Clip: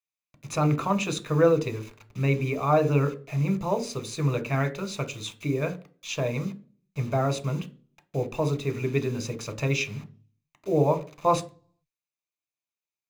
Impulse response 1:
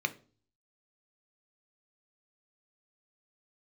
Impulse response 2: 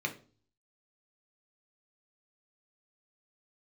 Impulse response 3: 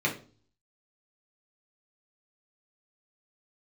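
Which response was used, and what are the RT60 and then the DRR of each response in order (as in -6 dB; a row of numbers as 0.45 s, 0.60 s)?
1; 0.40 s, 0.40 s, 0.40 s; 8.5 dB, 2.0 dB, -3.0 dB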